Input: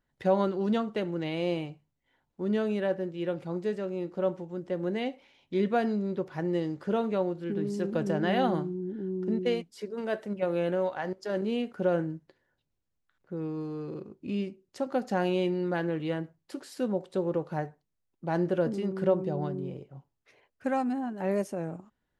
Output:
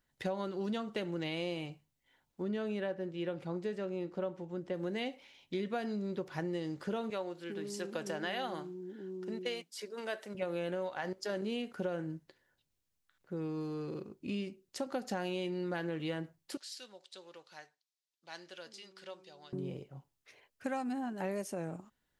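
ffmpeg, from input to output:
-filter_complex "[0:a]asettb=1/sr,asplit=3[s0][s1][s2];[s0]atrim=end=2.424[s3];[s1]atrim=start=2.42:end=4.74,asetpts=PTS-STARTPTS,afade=t=in:d=0.004:c=qsin,afade=t=out:st=2.316:d=0.004:c=qsin,highshelf=f=4500:g=-9.5[s4];[s2]atrim=start=4.736[s5];[s3][s4]acrossfade=d=0.004:c1=hsin:c2=qsin[s6];[s6][s5]acrossfade=d=0.004:c1=qsin:c2=hsin,asettb=1/sr,asplit=3[s7][s8][s9];[s7]atrim=end=7.104[s10];[s8]atrim=start=7.1:end=10.35,asetpts=PTS-STARTPTS,afade=t=in:d=0.004:c=qsin,afade=t=out:st=3.246:d=0.004:c=qsin,highpass=f=600:p=1[s11];[s9]atrim=start=10.346[s12];[s10][s11]acrossfade=d=0.004:c1=hsin:c2=qsin[s13];[s13][s12]acrossfade=d=0.004:c1=qsin:c2=hsin,asettb=1/sr,asplit=3[s14][s15][s16];[s14]atrim=end=16.574[s17];[s15]atrim=start=16.57:end=19.53,asetpts=PTS-STARTPTS,afade=t=in:d=0.004:c=qsin,afade=t=out:st=2.956:d=0.004:c=qsin,bandpass=f=4400:t=q:w=1.3[s18];[s16]atrim=start=19.526[s19];[s17][s18]acrossfade=d=0.004:c1=hsin:c2=qsin[s20];[s20][s19]acrossfade=d=0.004:c1=qsin:c2=hsin,highshelf=f=2100:g=9.5,acompressor=threshold=0.0316:ratio=6,volume=0.708"

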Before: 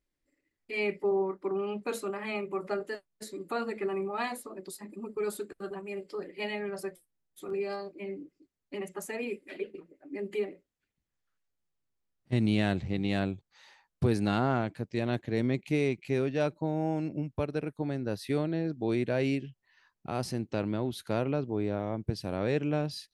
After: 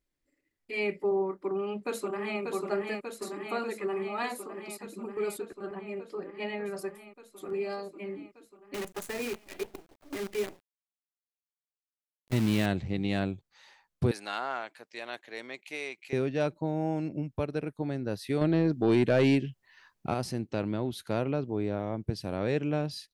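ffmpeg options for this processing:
-filter_complex "[0:a]asplit=2[s0][s1];[s1]afade=t=in:st=1.37:d=0.01,afade=t=out:st=2.41:d=0.01,aecho=0:1:590|1180|1770|2360|2950|3540|4130|4720|5310|5900|6490|7080:0.595662|0.47653|0.381224|0.304979|0.243983|0.195187|0.156149|0.124919|0.0999355|0.0799484|0.0639587|0.051167[s2];[s0][s2]amix=inputs=2:normalize=0,asettb=1/sr,asplit=3[s3][s4][s5];[s3]atrim=end=3.324[s6];[s4]atrim=start=3.32:end=4.87,asetpts=PTS-STARTPTS,afade=t=in:d=0.004:c=qsin,afade=t=out:st=1.546:d=0.004:c=qsin,lowshelf=f=140:g=-8.5[s7];[s5]atrim=start=4.866[s8];[s6][s7]acrossfade=d=0.004:c1=hsin:c2=qsin[s9];[s9][s8]acrossfade=d=0.004:c1=qsin:c2=hsin,asettb=1/sr,asplit=3[s10][s11][s12];[s10]atrim=end=5.384[s13];[s11]atrim=start=5.38:end=6.66,asetpts=PTS-STARTPTS,afade=t=in:d=0.004:c=qsin,afade=t=out:st=1.276:d=0.004:c=qsin,lowpass=f=2500:p=1[s14];[s12]atrim=start=6.656[s15];[s13][s14]acrossfade=d=0.004:c1=hsin:c2=qsin[s16];[s16][s15]acrossfade=d=0.004:c1=qsin:c2=hsin,asettb=1/sr,asplit=3[s17][s18][s19];[s17]atrim=end=8.744[s20];[s18]atrim=start=8.74:end=12.66,asetpts=PTS-STARTPTS,afade=t=in:d=0.004:c=qsin,afade=t=out:st=3.916:d=0.004:c=qsin,acrusher=bits=7:dc=4:mix=0:aa=0.000001[s21];[s19]atrim=start=12.656[s22];[s20][s21]acrossfade=d=0.004:c1=hsin:c2=qsin[s23];[s23][s22]acrossfade=d=0.004:c1=qsin:c2=hsin,asettb=1/sr,asplit=3[s24][s25][s26];[s24]atrim=end=14.114[s27];[s25]atrim=start=14.11:end=16.13,asetpts=PTS-STARTPTS,afade=t=in:d=0.004:c=qsin,afade=t=out:st=2.016:d=0.004:c=qsin,highpass=830[s28];[s26]atrim=start=16.126[s29];[s27][s28]acrossfade=d=0.004:c1=hsin:c2=qsin[s30];[s30][s29]acrossfade=d=0.004:c1=qsin:c2=hsin,asettb=1/sr,asplit=3[s31][s32][s33];[s31]atrim=end=18.414[s34];[s32]atrim=start=18.41:end=20.14,asetpts=PTS-STARTPTS,afade=t=in:d=0.004:c=qsin,afade=t=out:st=1.726:d=0.004:c=qsin,aeval=exprs='0.15*sin(PI/2*1.41*val(0)/0.15)':c=same[s35];[s33]atrim=start=20.136[s36];[s34][s35]acrossfade=d=0.004:c1=hsin:c2=qsin[s37];[s37][s36]acrossfade=d=0.004:c1=qsin:c2=hsin"

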